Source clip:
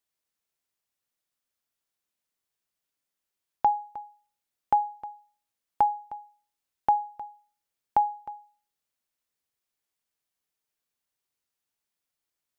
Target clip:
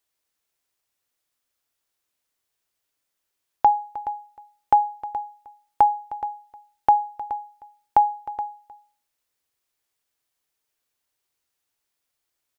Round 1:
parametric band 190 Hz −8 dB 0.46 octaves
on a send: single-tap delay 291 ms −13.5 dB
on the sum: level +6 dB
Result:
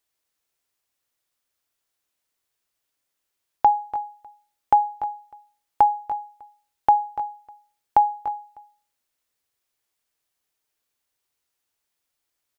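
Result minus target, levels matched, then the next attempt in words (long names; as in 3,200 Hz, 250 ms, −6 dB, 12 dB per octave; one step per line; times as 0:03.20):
echo 132 ms early
parametric band 190 Hz −8 dB 0.46 octaves
on a send: single-tap delay 423 ms −13.5 dB
on the sum: level +6 dB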